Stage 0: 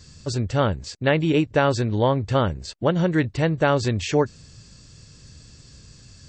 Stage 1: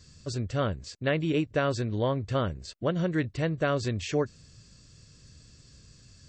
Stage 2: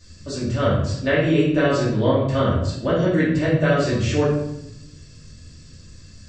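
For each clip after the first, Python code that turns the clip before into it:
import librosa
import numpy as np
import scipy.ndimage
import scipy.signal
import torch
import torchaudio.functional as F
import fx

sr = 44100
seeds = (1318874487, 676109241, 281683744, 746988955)

y1 = fx.notch(x, sr, hz=860.0, q=5.5)
y1 = y1 * librosa.db_to_amplitude(-7.0)
y2 = fx.room_shoebox(y1, sr, seeds[0], volume_m3=250.0, walls='mixed', distance_m=2.6)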